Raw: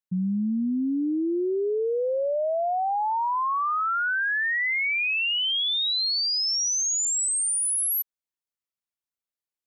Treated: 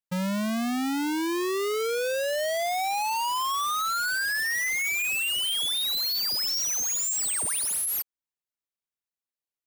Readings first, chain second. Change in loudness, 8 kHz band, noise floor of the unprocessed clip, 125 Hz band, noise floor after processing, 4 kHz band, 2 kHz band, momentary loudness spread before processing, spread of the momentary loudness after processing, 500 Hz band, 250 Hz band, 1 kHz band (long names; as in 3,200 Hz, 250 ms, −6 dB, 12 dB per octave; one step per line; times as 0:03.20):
−2.0 dB, −2.0 dB, below −85 dBFS, can't be measured, below −85 dBFS, −2.0 dB, −2.0 dB, 4 LU, 3 LU, −2.5 dB, −3.0 dB, −2.5 dB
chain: each half-wave held at its own peak
level −5 dB